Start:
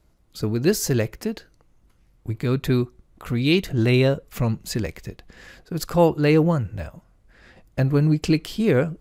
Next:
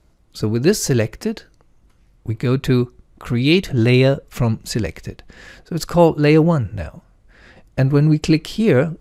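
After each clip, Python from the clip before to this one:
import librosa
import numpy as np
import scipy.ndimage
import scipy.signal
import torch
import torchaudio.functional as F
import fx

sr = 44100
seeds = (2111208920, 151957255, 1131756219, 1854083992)

y = scipy.signal.sosfilt(scipy.signal.butter(2, 11000.0, 'lowpass', fs=sr, output='sos'), x)
y = y * 10.0 ** (4.5 / 20.0)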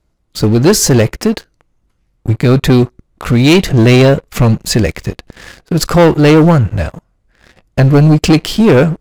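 y = fx.leveller(x, sr, passes=3)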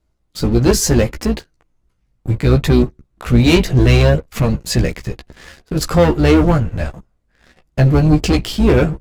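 y = fx.octave_divider(x, sr, octaves=2, level_db=-4.0)
y = fx.chorus_voices(y, sr, voices=2, hz=0.71, base_ms=15, depth_ms=2.2, mix_pct=40)
y = y * 10.0 ** (-2.5 / 20.0)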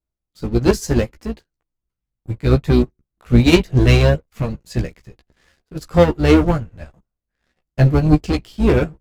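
y = fx.upward_expand(x, sr, threshold_db=-21.0, expansion=2.5)
y = y * 10.0 ** (1.5 / 20.0)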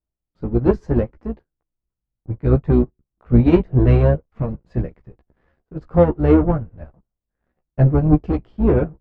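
y = scipy.signal.sosfilt(scipy.signal.butter(2, 1100.0, 'lowpass', fs=sr, output='sos'), x)
y = y * 10.0 ** (-1.0 / 20.0)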